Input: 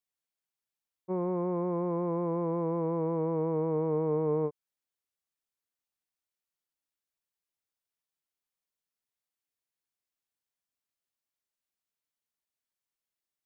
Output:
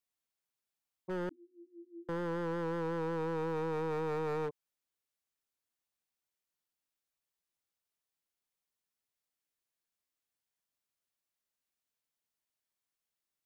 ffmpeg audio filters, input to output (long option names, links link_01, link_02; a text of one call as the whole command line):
ffmpeg -i in.wav -filter_complex "[0:a]asplit=2[link_01][link_02];[link_02]alimiter=level_in=5.5dB:limit=-24dB:level=0:latency=1:release=32,volume=-5.5dB,volume=1.5dB[link_03];[link_01][link_03]amix=inputs=2:normalize=0,aeval=exprs='0.0631*(abs(mod(val(0)/0.0631+3,4)-2)-1)':channel_layout=same,asettb=1/sr,asplit=3[link_04][link_05][link_06];[link_04]atrim=end=1.294[link_07];[link_05]atrim=start=1.29:end=2.09,asetpts=PTS-STARTPTS,afade=type=in:duration=0.004:curve=qsin,afade=type=out:start_time=0.796:duration=0.004:curve=qsin,asuperpass=centerf=290:order=20:qfactor=3.3[link_08];[link_06]atrim=start=2.086[link_09];[link_07][link_08]acrossfade=duration=0.004:curve1=hsin:curve2=qsin[link_10];[link_10][link_09]acrossfade=duration=0.004:curve1=qsin:curve2=hsin,volume=-6.5dB" out.wav